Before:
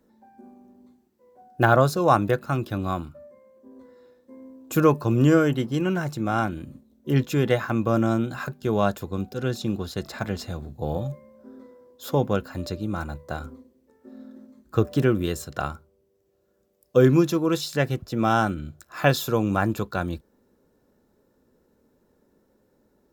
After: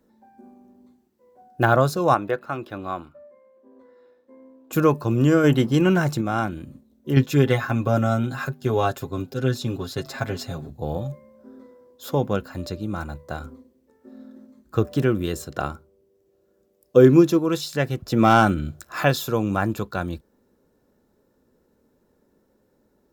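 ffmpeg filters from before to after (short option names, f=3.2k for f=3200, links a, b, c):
-filter_complex "[0:a]asettb=1/sr,asplit=3[a][b][c];[a]atrim=end=2.144[d];[b]atrim=start=2.14:end=4.73,asetpts=PTS-STARTPTS,afade=t=in:d=0.004:c=qsin,afade=t=out:st=2.586:d=0.004:c=qsin,bass=f=250:g=-12,treble=f=4k:g=-11[e];[c]atrim=start=4.726[f];[d][e]acrossfade=d=0.004:c1=hsin:c2=qsin[g];[g][f]acrossfade=d=0.004:c1=qsin:c2=hsin,asplit=3[h][i][j];[h]afade=t=out:st=5.43:d=0.02[k];[i]acontrast=63,afade=t=in:st=5.43:d=0.02,afade=t=out:st=6.2:d=0.02[l];[j]afade=t=in:st=6.2:d=0.02[m];[k][l][m]amix=inputs=3:normalize=0,asettb=1/sr,asplit=3[n][o][p];[n]atrim=end=7.164[q];[o]atrim=start=7.16:end=10.7,asetpts=PTS-STARTPTS,afade=t=in:d=0.004:c=qsin,afade=t=out:st=3.536:d=0.004:c=qsin,aecho=1:1:7.4:0.84,atrim=end_sample=156114[r];[p]atrim=start=10.696[s];[q][r]acrossfade=d=0.004:c1=hsin:c2=qsin[t];[t][s]acrossfade=d=0.004:c1=qsin:c2=hsin,asettb=1/sr,asplit=3[u][v][w];[u]atrim=end=15.334[x];[v]atrim=start=15.33:end=17.39,asetpts=PTS-STARTPTS,afade=t=in:d=0.004:c=qsin,afade=t=out:st=2.056:d=0.004:c=qsin,equalizer=f=350:t=o:w=1.4:g=5.5[y];[w]atrim=start=17.386[z];[x][y]acrossfade=d=0.004:c1=hsin:c2=qsin[aa];[aa][z]acrossfade=d=0.004:c1=qsin:c2=hsin,asettb=1/sr,asplit=3[ab][ac][ad];[ab]atrim=end=18.064[ae];[ac]atrim=start=18.06:end=19.04,asetpts=PTS-STARTPTS,afade=t=in:d=0.004:c=qsin,afade=t=out:st=0.976:d=0.004:c=qsin,acontrast=68[af];[ad]atrim=start=19.036[ag];[ae][af]acrossfade=d=0.004:c1=hsin:c2=qsin[ah];[ah][ag]acrossfade=d=0.004:c1=qsin:c2=hsin"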